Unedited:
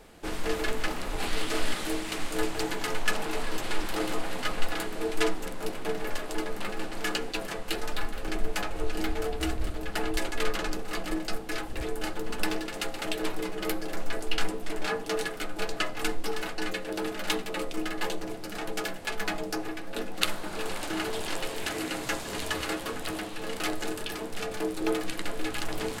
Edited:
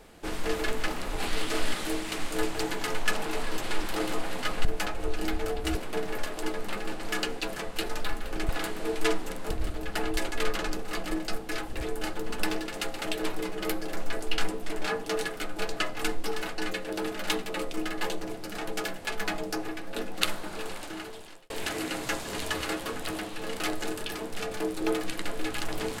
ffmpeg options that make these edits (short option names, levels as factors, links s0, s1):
-filter_complex "[0:a]asplit=6[s0][s1][s2][s3][s4][s5];[s0]atrim=end=4.652[s6];[s1]atrim=start=8.408:end=9.512[s7];[s2]atrim=start=5.668:end=8.412[s8];[s3]atrim=start=4.648:end=5.672[s9];[s4]atrim=start=9.508:end=21.5,asetpts=PTS-STARTPTS,afade=t=out:st=10.772:d=1.22[s10];[s5]atrim=start=21.5,asetpts=PTS-STARTPTS,afade=t=in:d=0.004:c=hsin[s11];[s6][s7]acrossfade=d=0.004:c1=hsin:c2=hsin[s12];[s12][s8]acrossfade=d=0.004:c1=hsin:c2=hsin[s13];[s13][s9]acrossfade=d=0.004:c1=hsin:c2=hsin[s14];[s10][s11]concat=n=2:v=0:a=1[s15];[s14][s15]acrossfade=d=0.004:c1=hsin:c2=hsin"